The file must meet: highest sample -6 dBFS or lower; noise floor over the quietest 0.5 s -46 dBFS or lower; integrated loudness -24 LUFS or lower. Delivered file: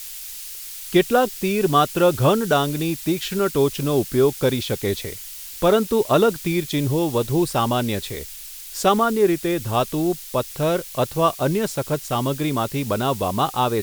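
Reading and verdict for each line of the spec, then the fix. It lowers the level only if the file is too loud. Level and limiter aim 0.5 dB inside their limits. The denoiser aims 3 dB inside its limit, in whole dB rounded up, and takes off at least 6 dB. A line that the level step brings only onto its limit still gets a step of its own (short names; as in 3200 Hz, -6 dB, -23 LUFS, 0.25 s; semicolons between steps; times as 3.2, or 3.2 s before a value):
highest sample -4.5 dBFS: fail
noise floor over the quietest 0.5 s -37 dBFS: fail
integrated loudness -21.0 LUFS: fail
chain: denoiser 9 dB, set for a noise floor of -37 dBFS; gain -3.5 dB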